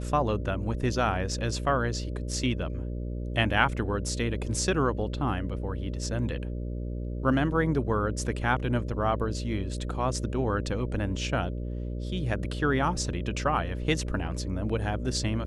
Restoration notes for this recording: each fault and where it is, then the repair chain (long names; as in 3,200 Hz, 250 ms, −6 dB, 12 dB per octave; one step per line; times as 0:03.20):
mains buzz 60 Hz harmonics 10 −33 dBFS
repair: hum removal 60 Hz, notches 10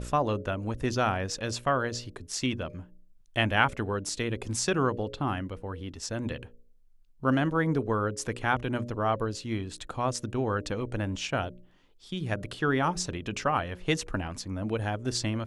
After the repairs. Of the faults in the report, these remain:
none of them is left